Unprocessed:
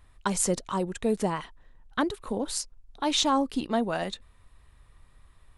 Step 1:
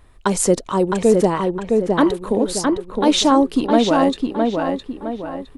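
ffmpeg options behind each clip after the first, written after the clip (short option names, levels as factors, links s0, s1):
-filter_complex "[0:a]equalizer=f=390:t=o:w=1.6:g=7.5,asplit=2[s0][s1];[s1]adelay=662,lowpass=f=2600:p=1,volume=0.708,asplit=2[s2][s3];[s3]adelay=662,lowpass=f=2600:p=1,volume=0.43,asplit=2[s4][s5];[s5]adelay=662,lowpass=f=2600:p=1,volume=0.43,asplit=2[s6][s7];[s7]adelay=662,lowpass=f=2600:p=1,volume=0.43,asplit=2[s8][s9];[s9]adelay=662,lowpass=f=2600:p=1,volume=0.43,asplit=2[s10][s11];[s11]adelay=662,lowpass=f=2600:p=1,volume=0.43[s12];[s0][s2][s4][s6][s8][s10][s12]amix=inputs=7:normalize=0,volume=2"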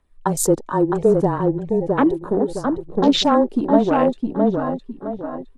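-af "aphaser=in_gain=1:out_gain=1:delay=3.3:decay=0.33:speed=0.67:type=triangular,afwtdn=0.0562,afreqshift=-20,volume=0.891"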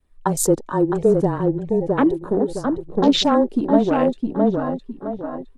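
-af "adynamicequalizer=threshold=0.0224:dfrequency=990:dqfactor=1.2:tfrequency=990:tqfactor=1.2:attack=5:release=100:ratio=0.375:range=2.5:mode=cutabove:tftype=bell"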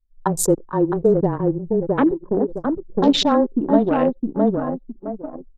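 -filter_complex "[0:a]asplit=2[s0][s1];[s1]adelay=93.29,volume=0.0501,highshelf=f=4000:g=-2.1[s2];[s0][s2]amix=inputs=2:normalize=0,anlmdn=631"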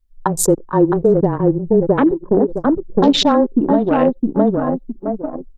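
-af "alimiter=limit=0.299:level=0:latency=1:release=353,volume=2.24"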